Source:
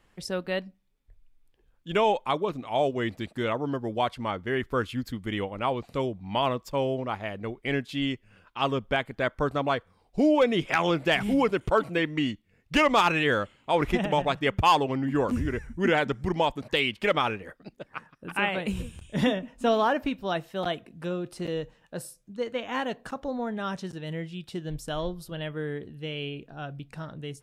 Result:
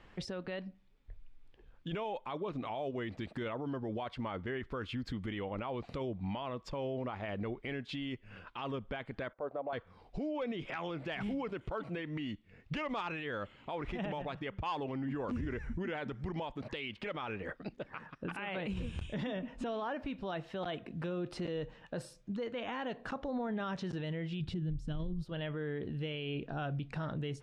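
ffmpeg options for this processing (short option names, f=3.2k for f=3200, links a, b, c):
-filter_complex "[0:a]asettb=1/sr,asplit=3[a][b][c];[a]atrim=end=9.334[d];[b]atrim=start=9.33:end=9.73,asetpts=PTS-STARTPTS,afade=t=in:d=0.004:c=qsin,afade=t=out:st=0.396:d=0.004:c=qsin,bandpass=f=610:t=q:w=2.7[e];[c]atrim=start=9.726[f];[d][e]acrossfade=d=0.004:c1=hsin:c2=qsin[g];[g][f]acrossfade=d=0.004:c1=qsin:c2=hsin,asplit=3[h][i][j];[h]afade=t=out:st=24.4:d=0.02[k];[i]asubboost=boost=8.5:cutoff=230,afade=t=in:st=24.4:d=0.02,afade=t=out:st=25.23:d=0.02[l];[j]afade=t=in:st=25.23:d=0.02[m];[k][l][m]amix=inputs=3:normalize=0,acompressor=threshold=-36dB:ratio=5,alimiter=level_in=12dB:limit=-24dB:level=0:latency=1:release=33,volume=-12dB,lowpass=4k,volume=6dB"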